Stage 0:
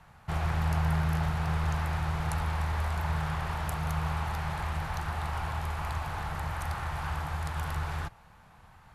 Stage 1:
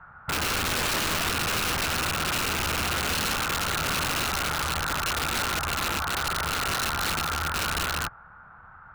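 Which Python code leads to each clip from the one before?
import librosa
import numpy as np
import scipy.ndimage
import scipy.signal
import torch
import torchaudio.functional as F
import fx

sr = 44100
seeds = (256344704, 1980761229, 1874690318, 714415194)

y = fx.lowpass_res(x, sr, hz=1400.0, q=9.2)
y = (np.mod(10.0 ** (21.5 / 20.0) * y + 1.0, 2.0) - 1.0) / 10.0 ** (21.5 / 20.0)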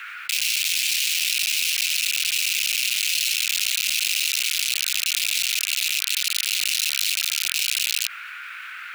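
y = scipy.signal.sosfilt(scipy.signal.ellip(4, 1.0, 80, 2400.0, 'highpass', fs=sr, output='sos'), x)
y = fx.env_flatten(y, sr, amount_pct=70)
y = F.gain(torch.from_numpy(y), 6.0).numpy()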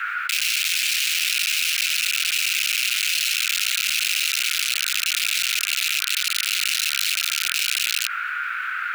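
y = fx.peak_eq(x, sr, hz=1400.0, db=13.5, octaves=0.92)
y = fx.notch(y, sr, hz=800.0, q=12.0)
y = F.gain(torch.from_numpy(y), -1.0).numpy()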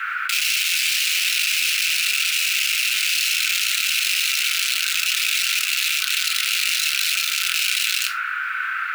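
y = fx.room_shoebox(x, sr, seeds[0], volume_m3=480.0, walls='furnished', distance_m=1.5)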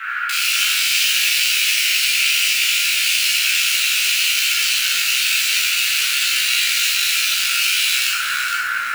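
y = fx.doubler(x, sr, ms=15.0, db=-2.5)
y = fx.rev_schroeder(y, sr, rt60_s=0.72, comb_ms=27, drr_db=-2.5)
y = fx.echo_crushed(y, sr, ms=462, feedback_pct=35, bits=5, wet_db=-6.0)
y = F.gain(torch.from_numpy(y), -3.5).numpy()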